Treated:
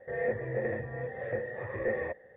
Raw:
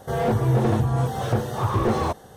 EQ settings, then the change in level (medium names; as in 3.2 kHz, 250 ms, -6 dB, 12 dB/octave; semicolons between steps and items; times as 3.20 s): cascade formant filter e; peaking EQ 1.9 kHz +14 dB 0.39 oct; 0.0 dB